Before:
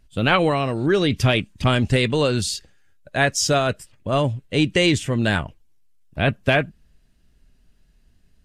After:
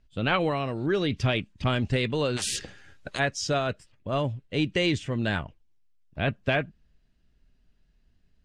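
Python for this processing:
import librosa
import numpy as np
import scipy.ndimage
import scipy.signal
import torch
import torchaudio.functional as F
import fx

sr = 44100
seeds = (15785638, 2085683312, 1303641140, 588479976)

y = scipy.signal.sosfilt(scipy.signal.butter(2, 5500.0, 'lowpass', fs=sr, output='sos'), x)
y = fx.spectral_comp(y, sr, ratio=10.0, at=(2.36, 3.18), fade=0.02)
y = F.gain(torch.from_numpy(y), -7.0).numpy()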